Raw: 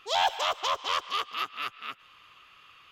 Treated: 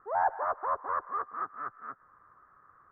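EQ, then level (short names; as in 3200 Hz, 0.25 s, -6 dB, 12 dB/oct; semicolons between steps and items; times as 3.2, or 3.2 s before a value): steep low-pass 1700 Hz 72 dB/oct; -1.0 dB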